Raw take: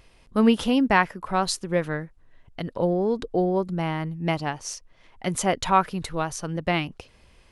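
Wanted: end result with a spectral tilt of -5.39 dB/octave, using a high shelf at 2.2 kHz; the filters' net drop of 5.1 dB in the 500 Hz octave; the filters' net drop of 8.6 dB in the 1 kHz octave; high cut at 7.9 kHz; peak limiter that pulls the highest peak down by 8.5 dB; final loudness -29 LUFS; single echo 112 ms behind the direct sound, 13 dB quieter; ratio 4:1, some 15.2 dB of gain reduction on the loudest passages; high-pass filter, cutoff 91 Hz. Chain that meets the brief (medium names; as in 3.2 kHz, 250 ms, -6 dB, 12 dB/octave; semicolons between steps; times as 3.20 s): high-pass 91 Hz; low-pass 7.9 kHz; peaking EQ 500 Hz -4 dB; peaking EQ 1 kHz -9 dB; treble shelf 2.2 kHz -5 dB; compression 4:1, threshold -35 dBFS; peak limiter -31 dBFS; delay 112 ms -13 dB; trim +11.5 dB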